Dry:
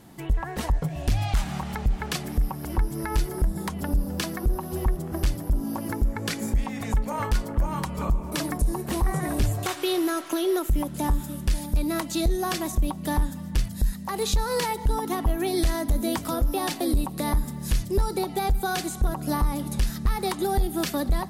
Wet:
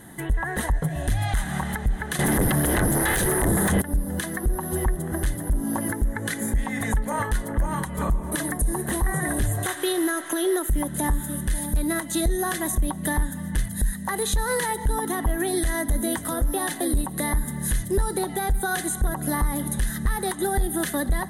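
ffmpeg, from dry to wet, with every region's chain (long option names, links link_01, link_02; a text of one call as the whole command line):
ffmpeg -i in.wav -filter_complex "[0:a]asettb=1/sr,asplit=3[link_01][link_02][link_03];[link_01]atrim=end=2.194[link_04];[link_02]atrim=start=2.19:end=3.82,asetpts=PTS-STARTPTS,afade=type=in:duration=0.004:curve=qsin,afade=type=out:start_time=1.626:duration=0.004:curve=qsin,acontrast=42,aeval=exprs='0.335*sin(PI/2*5.62*val(0)/0.335)':channel_layout=same[link_05];[link_03]atrim=start=3.816[link_06];[link_04][link_05]acrossfade=duration=0.004:curve1=hsin:curve2=qsin[link_07];[link_07][link_06]acrossfade=duration=0.004:curve1=qsin:curve2=hsin,superequalizer=11b=2.51:12b=0.501:14b=0.398:16b=2.82,alimiter=limit=-19.5dB:level=0:latency=1:release=214,volume=4dB" out.wav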